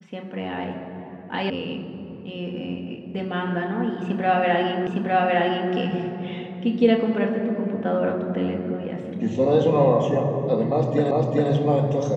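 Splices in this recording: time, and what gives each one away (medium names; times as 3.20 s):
1.50 s: sound stops dead
4.87 s: repeat of the last 0.86 s
11.11 s: repeat of the last 0.4 s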